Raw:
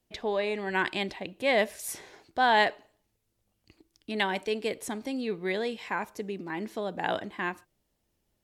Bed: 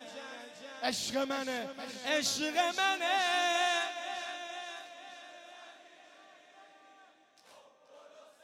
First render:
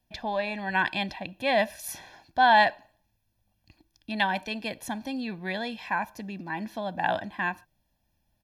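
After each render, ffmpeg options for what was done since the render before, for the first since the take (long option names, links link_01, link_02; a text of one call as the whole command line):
ffmpeg -i in.wav -af "equalizer=frequency=7900:width=3.1:gain=-12,aecho=1:1:1.2:0.8" out.wav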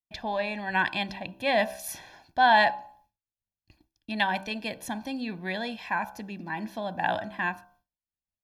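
ffmpeg -i in.wav -af "bandreject=frequency=64.95:width_type=h:width=4,bandreject=frequency=129.9:width_type=h:width=4,bandreject=frequency=194.85:width_type=h:width=4,bandreject=frequency=259.8:width_type=h:width=4,bandreject=frequency=324.75:width_type=h:width=4,bandreject=frequency=389.7:width_type=h:width=4,bandreject=frequency=454.65:width_type=h:width=4,bandreject=frequency=519.6:width_type=h:width=4,bandreject=frequency=584.55:width_type=h:width=4,bandreject=frequency=649.5:width_type=h:width=4,bandreject=frequency=714.45:width_type=h:width=4,bandreject=frequency=779.4:width_type=h:width=4,bandreject=frequency=844.35:width_type=h:width=4,bandreject=frequency=909.3:width_type=h:width=4,bandreject=frequency=974.25:width_type=h:width=4,bandreject=frequency=1039.2:width_type=h:width=4,bandreject=frequency=1104.15:width_type=h:width=4,bandreject=frequency=1169.1:width_type=h:width=4,bandreject=frequency=1234.05:width_type=h:width=4,bandreject=frequency=1299:width_type=h:width=4,bandreject=frequency=1363.95:width_type=h:width=4,bandreject=frequency=1428.9:width_type=h:width=4,bandreject=frequency=1493.85:width_type=h:width=4,bandreject=frequency=1558.8:width_type=h:width=4,agate=range=-33dB:threshold=-56dB:ratio=3:detection=peak" out.wav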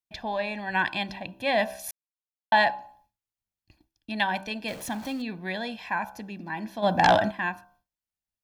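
ffmpeg -i in.wav -filter_complex "[0:a]asettb=1/sr,asplit=3[link_01][link_02][link_03];[link_01]atrim=end=4.684[link_04];[link_02]atrim=start=4.68:end=5.22,asetpts=PTS-STARTPTS,afade=type=in:duration=0.004:curve=qsin,afade=type=out:start_time=0.536:duration=0.004:curve=qsin,aeval=exprs='val(0)+0.5*0.0112*sgn(val(0))':channel_layout=same[link_05];[link_03]atrim=start=5.216[link_06];[link_04][link_05]acrossfade=duration=0.004:curve1=hsin:curve2=qsin[link_07];[link_07][link_06]acrossfade=duration=0.004:curve1=qsin:curve2=hsin,asplit=3[link_08][link_09][link_10];[link_08]afade=type=out:start_time=6.82:duration=0.02[link_11];[link_09]aeval=exprs='0.282*sin(PI/2*2.24*val(0)/0.282)':channel_layout=same,afade=type=in:start_time=6.82:duration=0.02,afade=type=out:start_time=7.3:duration=0.02[link_12];[link_10]afade=type=in:start_time=7.3:duration=0.02[link_13];[link_11][link_12][link_13]amix=inputs=3:normalize=0,asplit=3[link_14][link_15][link_16];[link_14]atrim=end=1.91,asetpts=PTS-STARTPTS,afade=type=out:start_time=1.906:duration=0.004:curve=hsin[link_17];[link_15]atrim=start=1.91:end=2.52,asetpts=PTS-STARTPTS,volume=0[link_18];[link_16]atrim=start=2.52,asetpts=PTS-STARTPTS,afade=type=in:duration=0.004:curve=hsin[link_19];[link_17][link_18][link_19]concat=n=3:v=0:a=1" out.wav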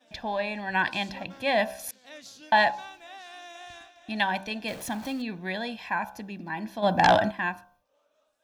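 ffmpeg -i in.wav -i bed.wav -filter_complex "[1:a]volume=-15dB[link_01];[0:a][link_01]amix=inputs=2:normalize=0" out.wav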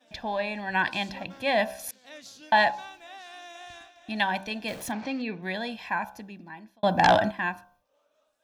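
ffmpeg -i in.wav -filter_complex "[0:a]asplit=3[link_01][link_02][link_03];[link_01]afade=type=out:start_time=4.91:duration=0.02[link_04];[link_02]highpass=110,equalizer=frequency=450:width_type=q:width=4:gain=7,equalizer=frequency=2300:width_type=q:width=4:gain=7,equalizer=frequency=3500:width_type=q:width=4:gain=-4,lowpass=frequency=5300:width=0.5412,lowpass=frequency=5300:width=1.3066,afade=type=in:start_time=4.91:duration=0.02,afade=type=out:start_time=5.41:duration=0.02[link_05];[link_03]afade=type=in:start_time=5.41:duration=0.02[link_06];[link_04][link_05][link_06]amix=inputs=3:normalize=0,asplit=2[link_07][link_08];[link_07]atrim=end=6.83,asetpts=PTS-STARTPTS,afade=type=out:start_time=5.95:duration=0.88[link_09];[link_08]atrim=start=6.83,asetpts=PTS-STARTPTS,afade=type=in:duration=0.004:curve=hsin[link_10];[link_09][link_10]concat=n=2:v=0:a=1" out.wav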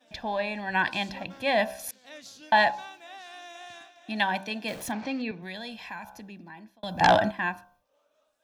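ffmpeg -i in.wav -filter_complex "[0:a]asettb=1/sr,asplit=3[link_01][link_02][link_03];[link_01]atrim=end=2.854[link_04];[link_02]atrim=start=2.85:end=4.75,asetpts=PTS-STARTPTS,afade=type=in:duration=0.004:curve=qsin,afade=type=out:start_time=1.896:duration=0.004:curve=qsin,highpass=frequency=120:width=0.5412,highpass=frequency=120:width=1.3066[link_05];[link_03]atrim=start=4.746[link_06];[link_04][link_05]acrossfade=duration=0.004:curve1=hsin:curve2=qsin[link_07];[link_07][link_06]acrossfade=duration=0.004:curve1=qsin:curve2=hsin,asettb=1/sr,asplit=3[link_08][link_09][link_10];[link_08]atrim=end=5.314[link_11];[link_09]atrim=start=5.31:end=7.01,asetpts=PTS-STARTPTS,afade=type=in:duration=0.004:curve=qsin,afade=type=out:start_time=1.696:duration=0.004:curve=qsin,acrossover=split=130|3000[link_12][link_13][link_14];[link_13]acompressor=threshold=-41dB:ratio=2.5:attack=3.2:release=140:knee=2.83:detection=peak[link_15];[link_12][link_15][link_14]amix=inputs=3:normalize=0[link_16];[link_10]atrim=start=7.006[link_17];[link_11][link_16]acrossfade=duration=0.004:curve1=hsin:curve2=qsin[link_18];[link_18][link_17]acrossfade=duration=0.004:curve1=qsin:curve2=hsin" out.wav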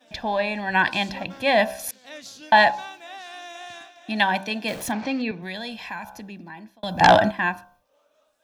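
ffmpeg -i in.wav -af "volume=5.5dB" out.wav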